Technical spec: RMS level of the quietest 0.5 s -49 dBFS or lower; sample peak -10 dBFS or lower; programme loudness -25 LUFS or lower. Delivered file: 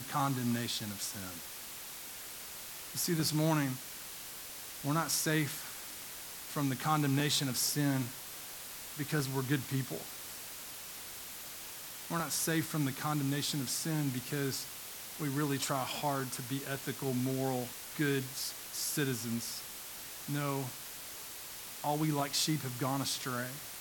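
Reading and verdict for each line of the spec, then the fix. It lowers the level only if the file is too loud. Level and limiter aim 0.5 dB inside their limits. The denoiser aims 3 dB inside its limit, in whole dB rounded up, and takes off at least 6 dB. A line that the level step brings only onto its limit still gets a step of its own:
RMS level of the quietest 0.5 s -46 dBFS: fail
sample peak -17.0 dBFS: OK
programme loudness -35.5 LUFS: OK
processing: denoiser 6 dB, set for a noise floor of -46 dBFS

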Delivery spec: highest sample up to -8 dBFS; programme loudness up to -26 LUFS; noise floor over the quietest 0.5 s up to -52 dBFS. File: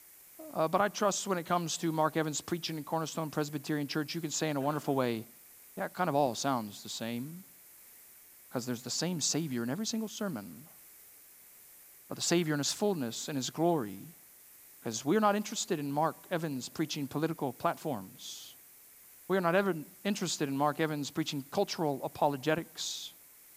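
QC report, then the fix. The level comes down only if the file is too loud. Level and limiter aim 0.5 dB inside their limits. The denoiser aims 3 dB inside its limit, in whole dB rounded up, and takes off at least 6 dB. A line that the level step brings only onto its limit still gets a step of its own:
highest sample -13.0 dBFS: OK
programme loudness -33.0 LUFS: OK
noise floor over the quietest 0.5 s -57 dBFS: OK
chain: none

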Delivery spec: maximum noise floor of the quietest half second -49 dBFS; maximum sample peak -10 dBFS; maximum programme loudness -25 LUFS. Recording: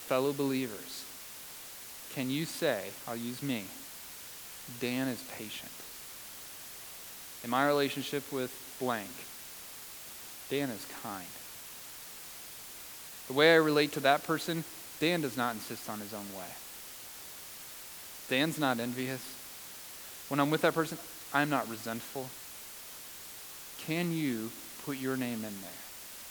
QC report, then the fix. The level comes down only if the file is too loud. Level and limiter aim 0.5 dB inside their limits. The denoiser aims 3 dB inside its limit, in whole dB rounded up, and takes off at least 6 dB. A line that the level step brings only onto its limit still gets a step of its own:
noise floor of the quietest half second -47 dBFS: fail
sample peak -9.0 dBFS: fail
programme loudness -35.0 LUFS: OK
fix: denoiser 6 dB, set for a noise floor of -47 dBFS; limiter -10.5 dBFS

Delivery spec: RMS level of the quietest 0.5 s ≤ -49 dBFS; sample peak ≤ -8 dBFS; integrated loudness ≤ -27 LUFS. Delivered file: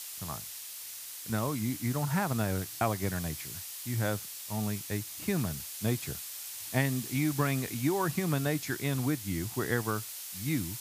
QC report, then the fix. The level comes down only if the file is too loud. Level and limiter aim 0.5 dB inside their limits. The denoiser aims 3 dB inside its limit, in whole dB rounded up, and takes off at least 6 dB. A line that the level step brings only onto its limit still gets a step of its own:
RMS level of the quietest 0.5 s -43 dBFS: fail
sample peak -12.0 dBFS: OK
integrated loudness -32.5 LUFS: OK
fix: denoiser 9 dB, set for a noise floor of -43 dBFS

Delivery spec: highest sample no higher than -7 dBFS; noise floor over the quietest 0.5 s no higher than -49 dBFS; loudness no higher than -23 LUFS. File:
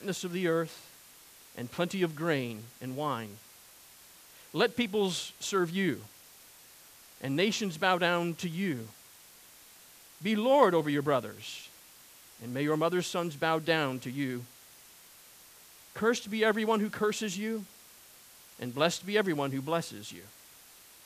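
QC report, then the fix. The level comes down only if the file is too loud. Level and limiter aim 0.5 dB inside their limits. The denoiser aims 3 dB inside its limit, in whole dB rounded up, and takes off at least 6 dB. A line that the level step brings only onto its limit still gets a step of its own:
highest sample -10.0 dBFS: OK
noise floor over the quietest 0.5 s -55 dBFS: OK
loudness -31.0 LUFS: OK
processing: none

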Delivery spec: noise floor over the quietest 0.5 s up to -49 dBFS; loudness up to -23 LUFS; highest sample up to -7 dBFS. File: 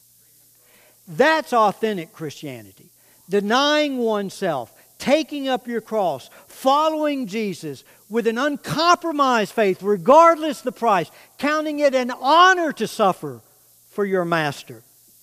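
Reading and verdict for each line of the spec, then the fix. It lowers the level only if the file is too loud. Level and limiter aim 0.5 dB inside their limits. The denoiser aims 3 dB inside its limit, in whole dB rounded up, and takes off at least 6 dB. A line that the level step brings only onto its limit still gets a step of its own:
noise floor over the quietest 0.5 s -54 dBFS: OK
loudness -19.5 LUFS: fail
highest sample -3.0 dBFS: fail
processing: gain -4 dB; limiter -7.5 dBFS

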